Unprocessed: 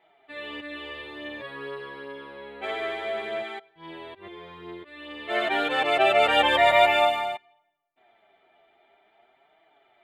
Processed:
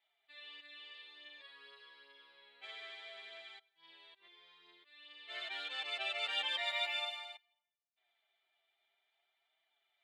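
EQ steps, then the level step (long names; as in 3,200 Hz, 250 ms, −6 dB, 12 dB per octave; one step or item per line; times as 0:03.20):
resonant band-pass 4,600 Hz, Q 1.8
−5.0 dB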